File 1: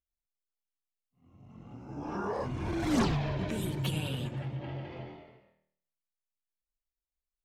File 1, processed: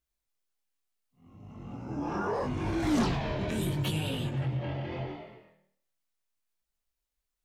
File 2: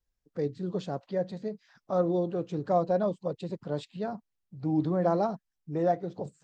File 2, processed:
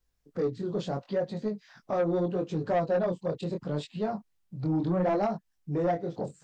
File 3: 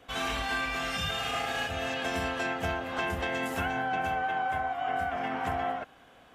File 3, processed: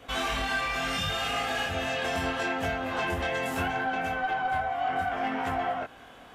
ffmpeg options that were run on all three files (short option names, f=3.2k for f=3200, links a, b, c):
-filter_complex "[0:a]asplit=2[a][b];[b]acompressor=threshold=-37dB:ratio=6,volume=2dB[c];[a][c]amix=inputs=2:normalize=0,flanger=delay=18.5:depth=6.1:speed=0.74,asoftclip=type=tanh:threshold=-22.5dB,volume=2.5dB"